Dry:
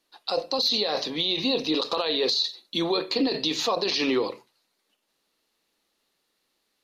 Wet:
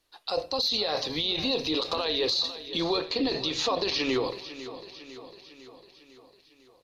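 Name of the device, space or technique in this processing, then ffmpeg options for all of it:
car stereo with a boomy subwoofer: -filter_complex "[0:a]asettb=1/sr,asplit=3[s0][s1][s2];[s0]atrim=end=2.664[s3];[s1]atrim=start=2.66:end=4.1,asetpts=PTS-STARTPTS,afade=t=in:d=0.004:c=qsin,afade=t=out:st=1.436:d=0.004:c=qsin,lowpass=7000[s4];[s2]atrim=start=4.096[s5];[s3][s4]acrossfade=d=0.004:c1=hsin:c2=qsin[s6];[s6][s5]acrossfade=d=0.004:c1=qsin:c2=hsin,lowshelf=f=130:t=q:w=1.5:g=12.5,alimiter=limit=0.133:level=0:latency=1:release=114,aecho=1:1:502|1004|1506|2008|2510|3012:0.2|0.116|0.0671|0.0389|0.0226|0.0131"

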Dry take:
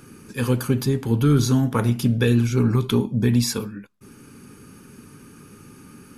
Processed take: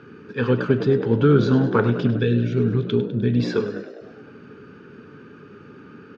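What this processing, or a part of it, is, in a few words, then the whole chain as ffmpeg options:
frequency-shifting delay pedal into a guitar cabinet: -filter_complex "[0:a]asplit=8[s0][s1][s2][s3][s4][s5][s6][s7];[s1]adelay=101,afreqshift=57,volume=0.237[s8];[s2]adelay=202,afreqshift=114,volume=0.146[s9];[s3]adelay=303,afreqshift=171,volume=0.0912[s10];[s4]adelay=404,afreqshift=228,volume=0.0562[s11];[s5]adelay=505,afreqshift=285,volume=0.0351[s12];[s6]adelay=606,afreqshift=342,volume=0.0216[s13];[s7]adelay=707,afreqshift=399,volume=0.0135[s14];[s0][s8][s9][s10][s11][s12][s13][s14]amix=inputs=8:normalize=0,lowpass=f=8900:w=0.5412,lowpass=f=8900:w=1.3066,highpass=97,equalizer=f=430:t=q:w=4:g=9,equalizer=f=1500:t=q:w=4:g=8,equalizer=f=2200:t=q:w=4:g=-3,lowpass=f=3700:w=0.5412,lowpass=f=3700:w=1.3066,asettb=1/sr,asplit=3[s15][s16][s17];[s15]atrim=end=2.194[s18];[s16]atrim=start=2.19:end=3.4,asetpts=PTS-STARTPTS,afade=t=in:d=0.004:c=qsin,afade=t=out:st=1.206:d=0.004:c=qsin,equalizer=f=940:w=0.63:g=-13[s19];[s17]atrim=start=3.396[s20];[s18][s19]acrossfade=d=0.004:c1=hsin:c2=qsin[s21];[s21][s20]acrossfade=d=0.004:c1=qsin:c2=hsin"

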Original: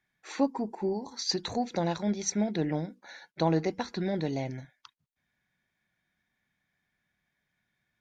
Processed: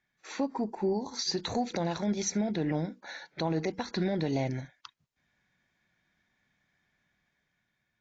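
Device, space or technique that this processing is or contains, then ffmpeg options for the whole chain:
low-bitrate web radio: -af "dynaudnorm=f=270:g=7:m=1.68,alimiter=limit=0.0891:level=0:latency=1:release=124" -ar 16000 -c:a aac -b:a 32k

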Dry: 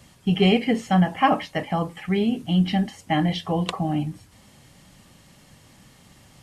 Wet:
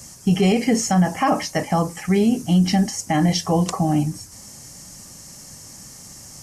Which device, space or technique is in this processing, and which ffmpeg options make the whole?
over-bright horn tweeter: -af "highshelf=f=4500:t=q:w=3:g=9.5,alimiter=limit=0.178:level=0:latency=1:release=36,volume=1.88"

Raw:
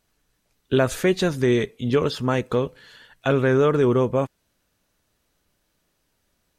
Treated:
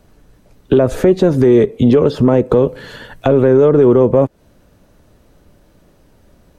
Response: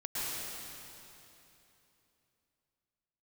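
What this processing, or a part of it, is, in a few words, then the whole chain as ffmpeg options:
mastering chain: -filter_complex "[0:a]equalizer=f=570:t=o:w=0.23:g=3,acrossover=split=270|810[s0][s1][s2];[s0]acompressor=threshold=0.0126:ratio=4[s3];[s1]acompressor=threshold=0.0562:ratio=4[s4];[s2]acompressor=threshold=0.0112:ratio=4[s5];[s3][s4][s5]amix=inputs=3:normalize=0,acompressor=threshold=0.0251:ratio=1.5,asoftclip=type=tanh:threshold=0.1,tiltshelf=f=1100:g=8,alimiter=level_in=7.5:limit=0.891:release=50:level=0:latency=1,asettb=1/sr,asplit=3[s6][s7][s8];[s6]atrim=end=2.494[s9];[s7]atrim=start=2.49:end=3.7,asetpts=PTS-STARTPTS,afade=t=in:d=0.004:c=qsin,afade=t=out:st=1.206:d=0.004:c=qsin,highshelf=f=7600:g=5[s10];[s8]atrim=start=3.696[s11];[s9][s10]acrossfade=d=0.004:c1=hsin:c2=qsin[s12];[s12][s11]acrossfade=d=0.004:c1=qsin:c2=hsin,volume=0.891"

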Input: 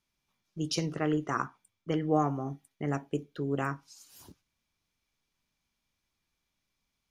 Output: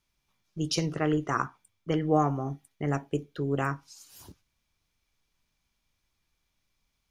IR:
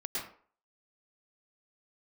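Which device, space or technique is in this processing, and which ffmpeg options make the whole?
low shelf boost with a cut just above: -af "lowshelf=f=83:g=7,equalizer=f=230:t=o:w=0.88:g=-3,volume=1.41"

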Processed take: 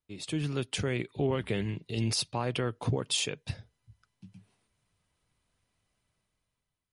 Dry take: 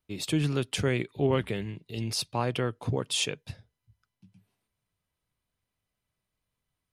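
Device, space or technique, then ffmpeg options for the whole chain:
low-bitrate web radio: -af "dynaudnorm=f=260:g=7:m=4.73,alimiter=limit=0.224:level=0:latency=1:release=278,volume=0.501" -ar 44100 -c:a libmp3lame -b:a 48k

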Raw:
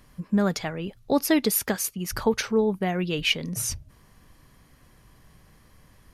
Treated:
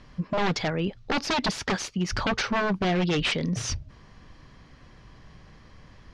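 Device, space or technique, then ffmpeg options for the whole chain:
synthesiser wavefolder: -af "aeval=exprs='0.0631*(abs(mod(val(0)/0.0631+3,4)-2)-1)':c=same,lowpass=f=5600:w=0.5412,lowpass=f=5600:w=1.3066,volume=1.78"

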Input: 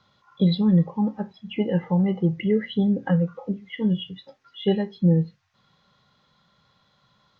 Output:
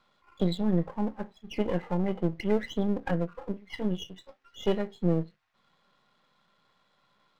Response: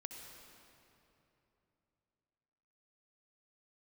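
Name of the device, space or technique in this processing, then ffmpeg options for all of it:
crystal radio: -af "highpass=230,lowpass=3400,aeval=exprs='if(lt(val(0),0),0.251*val(0),val(0))':c=same"

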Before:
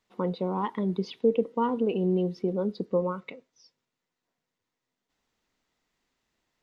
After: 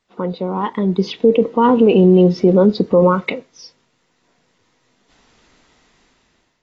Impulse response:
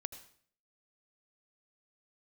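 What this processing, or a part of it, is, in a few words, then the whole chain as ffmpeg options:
low-bitrate web radio: -af "dynaudnorm=f=460:g=5:m=6.68,alimiter=limit=0.316:level=0:latency=1:release=33,volume=2.11" -ar 24000 -c:a aac -b:a 24k

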